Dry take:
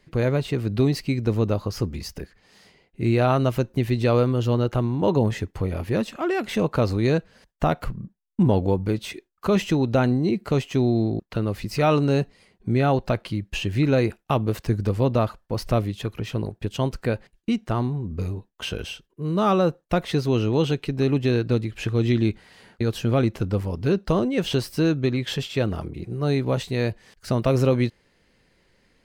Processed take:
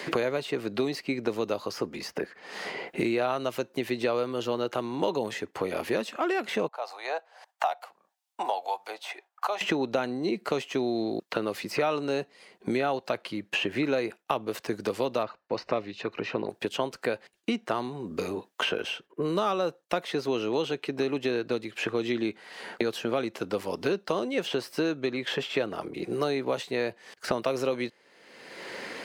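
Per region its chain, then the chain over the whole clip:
6.68–9.61 s: ladder high-pass 700 Hz, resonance 70% + harmonic tremolo 1.7 Hz, depth 50%, crossover 610 Hz
15.23–16.49 s: Butterworth band-stop 3.3 kHz, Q 7.3 + distance through air 200 m + loudspeaker Doppler distortion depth 0.12 ms
whole clip: high-pass 390 Hz 12 dB/octave; treble shelf 9.4 kHz -4.5 dB; three bands compressed up and down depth 100%; trim -2 dB

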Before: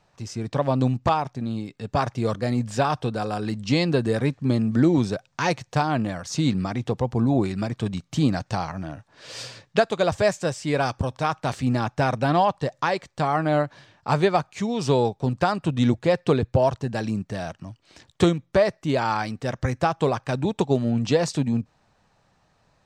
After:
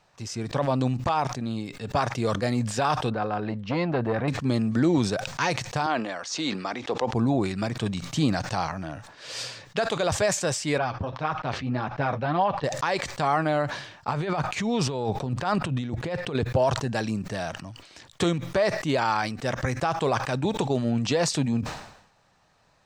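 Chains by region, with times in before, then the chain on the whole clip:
3.10–4.28 s: low-pass 2.2 kHz + transformer saturation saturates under 520 Hz
5.86–7.13 s: three-band isolator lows -23 dB, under 270 Hz, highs -20 dB, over 7.4 kHz + tape noise reduction on one side only encoder only
10.78–12.64 s: flange 1.8 Hz, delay 4.6 ms, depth 6.7 ms, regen -33% + distance through air 250 m
14.08–16.35 s: tone controls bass +3 dB, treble -6 dB + compressor with a negative ratio -26 dBFS
whole clip: bass shelf 490 Hz -6 dB; peak limiter -16 dBFS; decay stretcher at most 74 dB/s; trim +2.5 dB

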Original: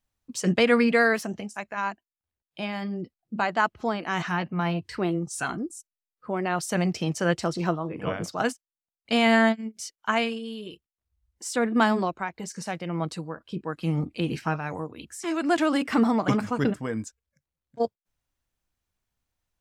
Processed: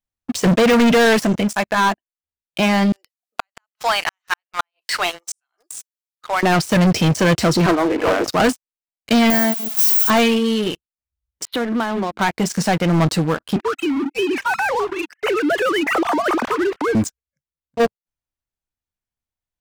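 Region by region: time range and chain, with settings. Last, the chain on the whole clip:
2.92–6.43 s: Bessel high-pass 1 kHz, order 6 + treble shelf 3 kHz +9 dB + inverted gate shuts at -19 dBFS, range -42 dB
7.66–8.28 s: steep high-pass 260 Hz 48 dB/octave + distance through air 200 m + loudspeaker Doppler distortion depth 0.23 ms
9.30–10.10 s: zero-crossing glitches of -15 dBFS + pre-emphasis filter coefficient 0.8
11.45–12.21 s: steep low-pass 4.1 kHz 96 dB/octave + de-hum 105.9 Hz, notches 3 + compression 4:1, threshold -39 dBFS
13.56–16.95 s: formants replaced by sine waves + compression 4:1, threshold -33 dBFS + bass shelf 270 Hz -8 dB
whole clip: de-esser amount 90%; waveshaping leveller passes 5

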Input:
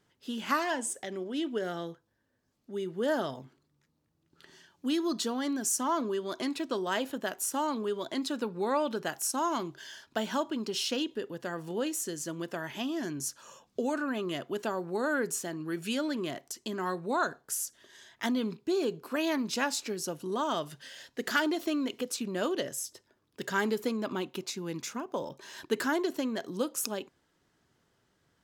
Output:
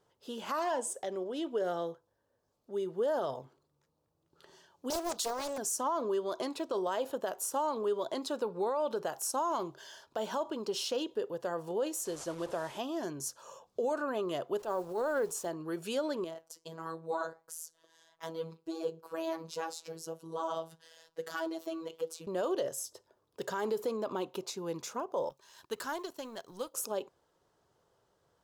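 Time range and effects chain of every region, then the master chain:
4.90–5.58 s: RIAA curve recording + loudspeaker Doppler distortion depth 0.76 ms
12.05–12.78 s: one-bit delta coder 64 kbps, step -39.5 dBFS + treble shelf 9.2 kHz -6.5 dB
14.59–15.46 s: send-on-delta sampling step -47.5 dBFS + transient shaper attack -11 dB, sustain -2 dB
16.24–22.27 s: flange 1.5 Hz, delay 3 ms, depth 4.8 ms, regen -84% + robot voice 163 Hz
25.29–26.74 s: companding laws mixed up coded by A + peaking EQ 470 Hz -11 dB 2.2 oct
whole clip: graphic EQ 250/500/1000/2000 Hz -7/+9/+6/-7 dB; peak limiter -21 dBFS; trim -3 dB

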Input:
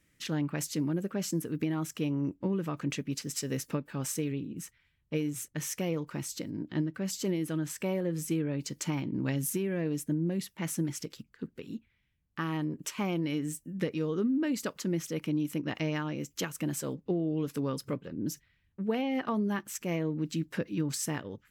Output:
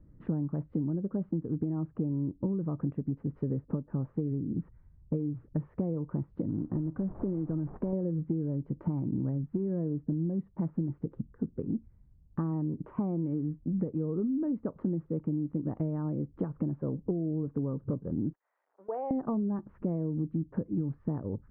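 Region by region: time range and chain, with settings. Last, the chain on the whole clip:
6.49–7.93 s: CVSD coder 16 kbps + compression 2.5:1, threshold -35 dBFS
18.33–19.11 s: zero-crossing glitches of -35.5 dBFS + high-pass 560 Hz 24 dB/octave + level held to a coarse grid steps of 20 dB
whole clip: low-pass 1.1 kHz 24 dB/octave; tilt EQ -3.5 dB/octave; compression 10:1, threshold -33 dBFS; trim +5 dB

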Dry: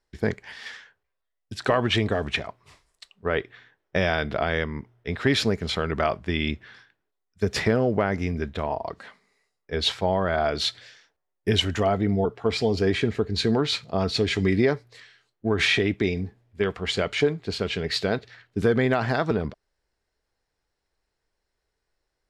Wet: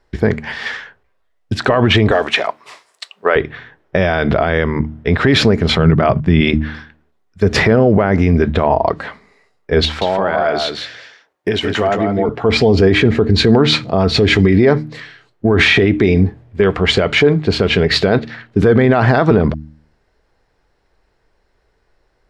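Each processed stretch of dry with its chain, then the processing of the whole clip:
2.11–3.36 s: high-pass 510 Hz + treble shelf 4.2 kHz +8.5 dB
5.78–6.41 s: level held to a coarse grid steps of 15 dB + peaking EQ 140 Hz +14 dB 1.4 oct
9.85–12.29 s: high-pass 390 Hz 6 dB/octave + compression 3:1, threshold -33 dBFS + delay 166 ms -5 dB
whole clip: low-pass 1.8 kHz 6 dB/octave; de-hum 76.38 Hz, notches 4; loudness maximiser +20 dB; trim -1 dB

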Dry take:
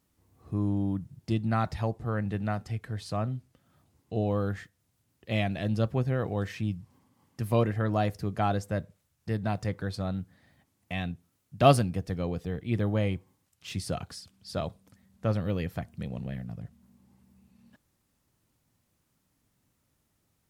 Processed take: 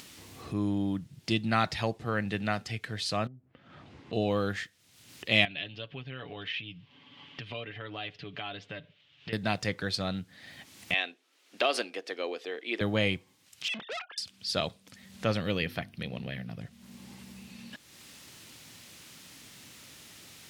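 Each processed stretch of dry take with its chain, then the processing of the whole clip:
3.27–4.13 s: low-pass that closes with the level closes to 800 Hz, closed at -34.5 dBFS + Bessel low-pass 1.7 kHz + compression 2.5:1, threshold -50 dBFS
5.45–9.33 s: comb 7 ms, depth 61% + compression 2:1, threshold -33 dBFS + four-pole ladder low-pass 3.5 kHz, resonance 60%
10.94–12.81 s: inverse Chebyshev high-pass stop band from 160 Hz + treble shelf 5.9 kHz -12 dB + compression 12:1, threshold -24 dBFS
13.68–14.18 s: formants replaced by sine waves + valve stage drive 39 dB, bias 0.3
15.58–16.59 s: peaking EQ 7.3 kHz -12 dB 0.47 oct + hum notches 50/100/150/200/250/300/350 Hz
whole clip: frequency weighting D; upward compressor, threshold -36 dBFS; trim +1.5 dB

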